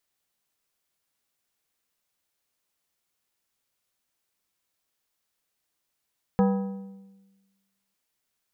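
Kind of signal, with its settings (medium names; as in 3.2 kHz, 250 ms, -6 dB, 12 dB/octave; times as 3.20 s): metal hit plate, lowest mode 195 Hz, modes 6, decay 1.28 s, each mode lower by 5 dB, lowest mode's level -17 dB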